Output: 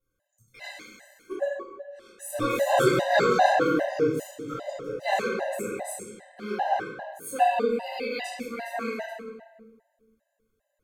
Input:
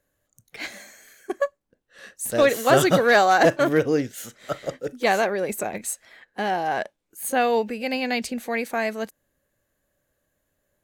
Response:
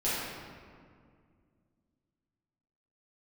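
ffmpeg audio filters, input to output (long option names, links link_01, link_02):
-filter_complex "[0:a]equalizer=frequency=230:width=1.5:gain=-2.5[link_01];[1:a]atrim=start_sample=2205,asetrate=70560,aresample=44100[link_02];[link_01][link_02]afir=irnorm=-1:irlink=0,afftfilt=real='re*gt(sin(2*PI*2.5*pts/sr)*(1-2*mod(floor(b*sr/1024/520),2)),0)':imag='im*gt(sin(2*PI*2.5*pts/sr)*(1-2*mod(floor(b*sr/1024/520),2)),0)':win_size=1024:overlap=0.75,volume=-7.5dB"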